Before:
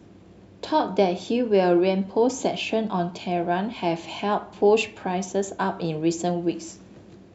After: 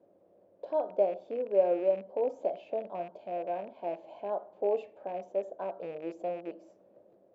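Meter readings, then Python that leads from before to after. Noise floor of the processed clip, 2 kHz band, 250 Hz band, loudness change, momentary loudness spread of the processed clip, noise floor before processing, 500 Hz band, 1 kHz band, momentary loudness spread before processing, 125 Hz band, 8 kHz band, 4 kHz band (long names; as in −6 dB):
−64 dBFS, −21.0 dB, −19.0 dB, −9.0 dB, 12 LU, −49 dBFS, −6.5 dB, −12.0 dB, 8 LU, below −20 dB, can't be measured, below −25 dB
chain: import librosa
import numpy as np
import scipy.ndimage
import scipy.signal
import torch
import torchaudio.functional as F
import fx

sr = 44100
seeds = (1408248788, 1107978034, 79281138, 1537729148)

y = fx.rattle_buzz(x, sr, strikes_db=-30.0, level_db=-17.0)
y = fx.bandpass_q(y, sr, hz=570.0, q=6.3)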